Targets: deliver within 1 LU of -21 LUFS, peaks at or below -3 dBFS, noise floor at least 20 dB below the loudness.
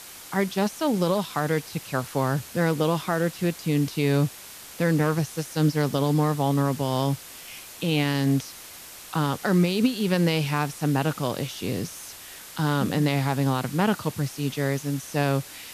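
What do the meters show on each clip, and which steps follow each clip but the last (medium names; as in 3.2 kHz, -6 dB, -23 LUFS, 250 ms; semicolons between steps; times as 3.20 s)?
noise floor -43 dBFS; noise floor target -46 dBFS; loudness -25.5 LUFS; peak level -11.0 dBFS; loudness target -21.0 LUFS
-> noise print and reduce 6 dB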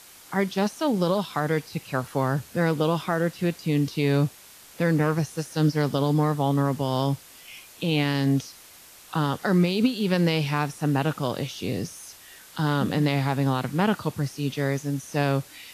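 noise floor -49 dBFS; loudness -25.5 LUFS; peak level -11.0 dBFS; loudness target -21.0 LUFS
-> trim +4.5 dB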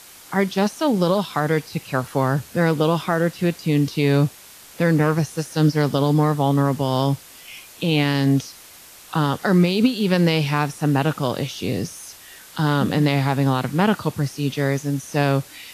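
loudness -21.0 LUFS; peak level -6.5 dBFS; noise floor -45 dBFS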